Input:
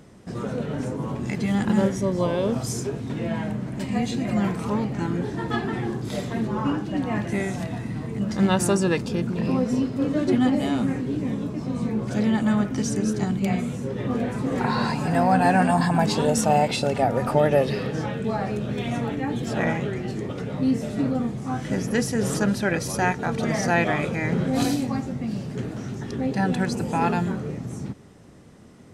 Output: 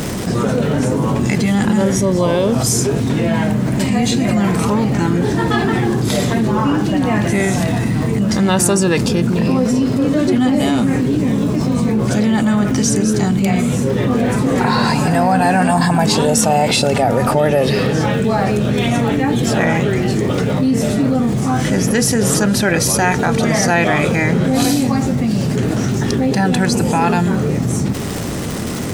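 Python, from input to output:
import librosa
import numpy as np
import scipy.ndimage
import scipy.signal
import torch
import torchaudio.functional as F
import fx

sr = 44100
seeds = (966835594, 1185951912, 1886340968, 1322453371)

y = fx.high_shelf(x, sr, hz=5300.0, db=7.0)
y = fx.dmg_crackle(y, sr, seeds[0], per_s=430.0, level_db=-44.0)
y = fx.env_flatten(y, sr, amount_pct=70)
y = F.gain(torch.from_numpy(y), 3.5).numpy()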